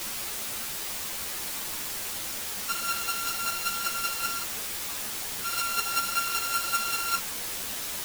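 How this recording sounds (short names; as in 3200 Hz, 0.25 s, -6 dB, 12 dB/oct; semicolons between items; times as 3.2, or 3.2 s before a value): a buzz of ramps at a fixed pitch in blocks of 32 samples; chopped level 5.2 Hz, depth 60%, duty 15%; a quantiser's noise floor 6-bit, dither triangular; a shimmering, thickened sound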